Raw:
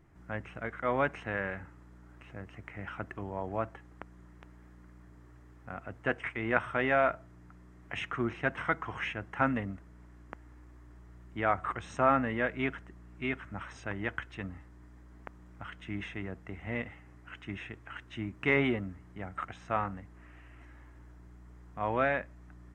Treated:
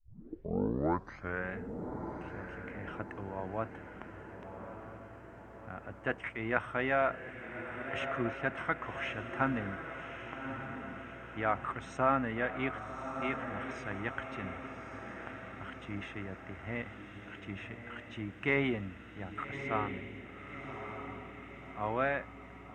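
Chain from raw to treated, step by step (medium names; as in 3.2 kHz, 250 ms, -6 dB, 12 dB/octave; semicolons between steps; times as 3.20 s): tape start-up on the opening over 1.52 s; echo that smears into a reverb 1173 ms, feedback 56%, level -7.5 dB; trim -3 dB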